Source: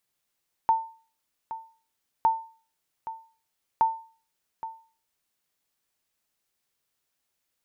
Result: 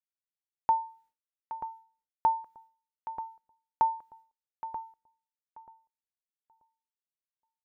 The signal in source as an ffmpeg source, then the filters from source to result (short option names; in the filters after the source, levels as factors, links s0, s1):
-f lavfi -i "aevalsrc='0.2*(sin(2*PI*899*mod(t,1.56))*exp(-6.91*mod(t,1.56)/0.4)+0.2*sin(2*PI*899*max(mod(t,1.56)-0.82,0))*exp(-6.91*max(mod(t,1.56)-0.82,0)/0.4))':d=4.68:s=44100"
-filter_complex "[0:a]agate=range=0.0224:threshold=0.00126:ratio=3:detection=peak,highshelf=f=2000:g=-9.5,asplit=2[s0][s1];[s1]adelay=934,lowpass=f=1100:p=1,volume=0.316,asplit=2[s2][s3];[s3]adelay=934,lowpass=f=1100:p=1,volume=0.19,asplit=2[s4][s5];[s5]adelay=934,lowpass=f=1100:p=1,volume=0.19[s6];[s0][s2][s4][s6]amix=inputs=4:normalize=0"